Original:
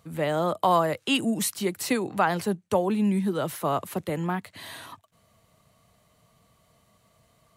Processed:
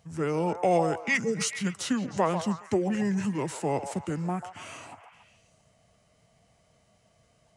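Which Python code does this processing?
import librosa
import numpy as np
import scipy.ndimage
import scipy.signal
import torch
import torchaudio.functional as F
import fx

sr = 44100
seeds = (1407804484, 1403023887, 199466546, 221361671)

y = fx.formant_shift(x, sr, semitones=-6)
y = fx.echo_stepped(y, sr, ms=140, hz=760.0, octaves=0.7, feedback_pct=70, wet_db=-7)
y = F.gain(torch.from_numpy(y), -2.0).numpy()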